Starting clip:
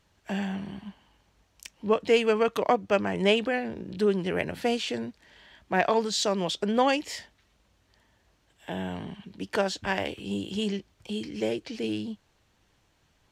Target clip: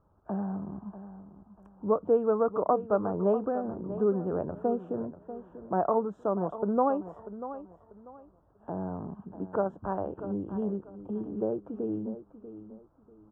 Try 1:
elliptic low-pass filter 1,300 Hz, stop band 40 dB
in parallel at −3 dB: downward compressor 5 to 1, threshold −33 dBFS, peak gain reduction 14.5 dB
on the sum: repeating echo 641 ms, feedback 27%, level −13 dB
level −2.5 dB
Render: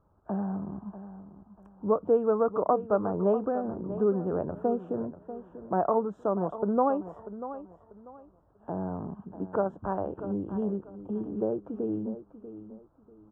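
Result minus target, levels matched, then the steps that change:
downward compressor: peak gain reduction −6 dB
change: downward compressor 5 to 1, threshold −40.5 dBFS, peak gain reduction 20.5 dB

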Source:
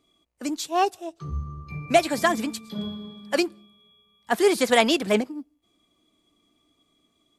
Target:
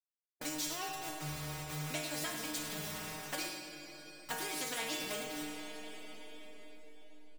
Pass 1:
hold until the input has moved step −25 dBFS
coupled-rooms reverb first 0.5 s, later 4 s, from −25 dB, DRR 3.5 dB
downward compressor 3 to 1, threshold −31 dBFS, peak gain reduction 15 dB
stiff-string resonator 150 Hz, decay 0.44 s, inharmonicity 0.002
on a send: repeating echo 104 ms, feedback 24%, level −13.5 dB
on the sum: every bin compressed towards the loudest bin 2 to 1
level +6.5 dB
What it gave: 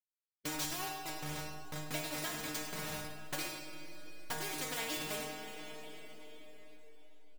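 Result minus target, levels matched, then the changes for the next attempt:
hold until the input has moved: distortion +12 dB
change: hold until the input has moved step −37 dBFS

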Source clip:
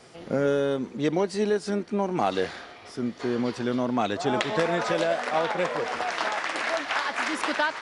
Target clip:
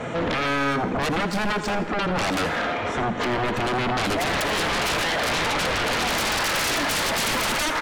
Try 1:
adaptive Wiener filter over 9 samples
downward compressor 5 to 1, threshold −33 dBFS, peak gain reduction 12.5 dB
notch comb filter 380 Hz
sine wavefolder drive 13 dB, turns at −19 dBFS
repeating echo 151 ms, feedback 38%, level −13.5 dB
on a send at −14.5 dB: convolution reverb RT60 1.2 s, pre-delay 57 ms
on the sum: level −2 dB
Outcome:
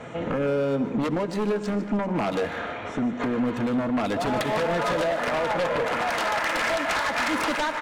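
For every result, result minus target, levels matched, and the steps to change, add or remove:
echo 69 ms late; sine wavefolder: distortion −22 dB
change: repeating echo 82 ms, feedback 38%, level −13.5 dB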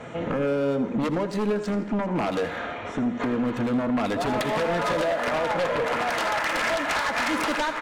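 sine wavefolder: distortion −22 dB
change: sine wavefolder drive 22 dB, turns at −19 dBFS

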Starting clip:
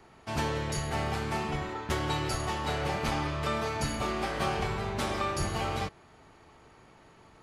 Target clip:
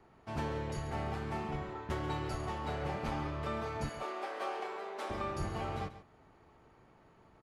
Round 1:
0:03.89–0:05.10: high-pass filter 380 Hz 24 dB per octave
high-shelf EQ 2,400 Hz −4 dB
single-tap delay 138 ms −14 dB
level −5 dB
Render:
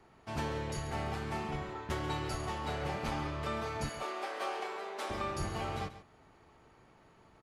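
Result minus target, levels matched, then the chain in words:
4,000 Hz band +4.0 dB
0:03.89–0:05.10: high-pass filter 380 Hz 24 dB per octave
high-shelf EQ 2,400 Hz −11 dB
single-tap delay 138 ms −14 dB
level −5 dB

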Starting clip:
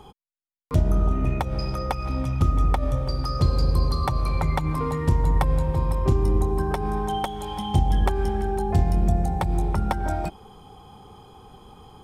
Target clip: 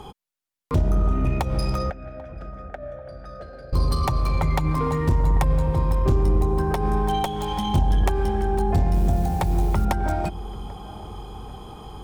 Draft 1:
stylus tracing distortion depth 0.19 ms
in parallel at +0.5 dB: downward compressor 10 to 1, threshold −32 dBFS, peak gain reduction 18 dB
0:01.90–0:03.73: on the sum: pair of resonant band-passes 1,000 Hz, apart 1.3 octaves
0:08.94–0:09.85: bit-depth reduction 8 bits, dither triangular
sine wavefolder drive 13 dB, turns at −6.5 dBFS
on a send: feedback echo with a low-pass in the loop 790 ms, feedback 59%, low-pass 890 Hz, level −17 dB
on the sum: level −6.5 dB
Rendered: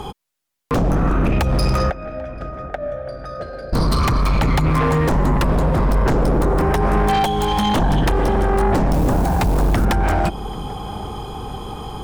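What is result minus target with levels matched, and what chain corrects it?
sine wavefolder: distortion +20 dB
stylus tracing distortion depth 0.19 ms
in parallel at +0.5 dB: downward compressor 10 to 1, threshold −32 dBFS, peak gain reduction 18 dB
0:01.90–0:03.73: on the sum: pair of resonant band-passes 1,000 Hz, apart 1.3 octaves
0:08.94–0:09.85: bit-depth reduction 8 bits, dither triangular
sine wavefolder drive 3 dB, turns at −6.5 dBFS
on a send: feedback echo with a low-pass in the loop 790 ms, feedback 59%, low-pass 890 Hz, level −17 dB
on the sum: level −6.5 dB

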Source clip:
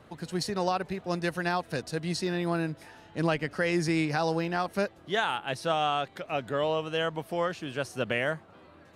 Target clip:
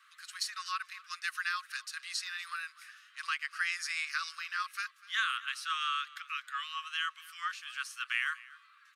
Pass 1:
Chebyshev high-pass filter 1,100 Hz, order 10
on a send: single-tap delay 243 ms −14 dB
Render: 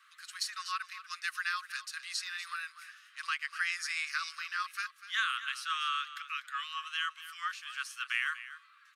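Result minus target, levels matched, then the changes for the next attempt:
echo-to-direct +6.5 dB
change: single-tap delay 243 ms −20.5 dB

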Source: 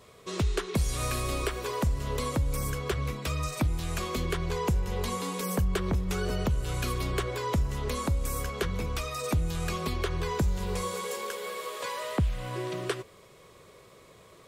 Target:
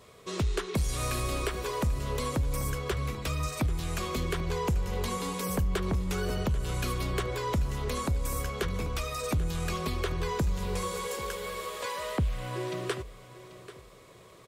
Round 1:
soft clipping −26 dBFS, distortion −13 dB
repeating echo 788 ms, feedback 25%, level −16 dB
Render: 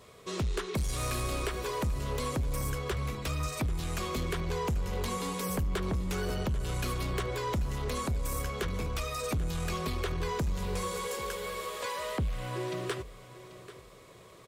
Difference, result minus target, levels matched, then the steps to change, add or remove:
soft clipping: distortion +9 dB
change: soft clipping −19.5 dBFS, distortion −22 dB

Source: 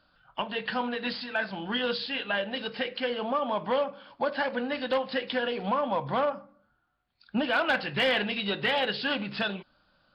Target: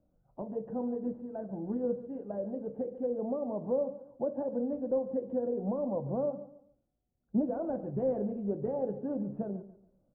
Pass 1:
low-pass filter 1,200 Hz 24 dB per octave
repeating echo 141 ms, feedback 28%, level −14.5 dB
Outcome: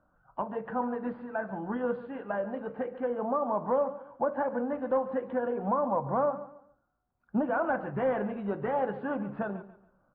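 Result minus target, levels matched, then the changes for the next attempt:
1,000 Hz band +11.0 dB
change: low-pass filter 560 Hz 24 dB per octave

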